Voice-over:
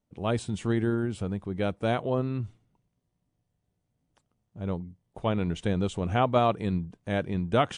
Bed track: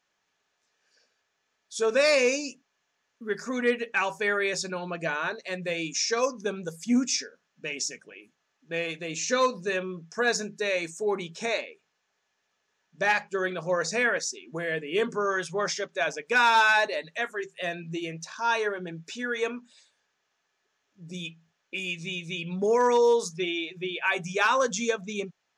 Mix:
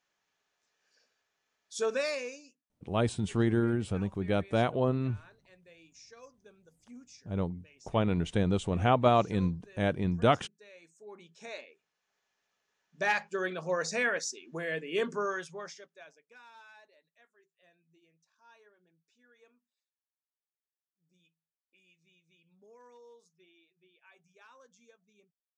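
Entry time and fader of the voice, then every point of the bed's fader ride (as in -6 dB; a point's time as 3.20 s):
2.70 s, -0.5 dB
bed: 1.84 s -4.5 dB
2.62 s -27 dB
10.75 s -27 dB
12.14 s -4.5 dB
15.23 s -4.5 dB
16.41 s -34.5 dB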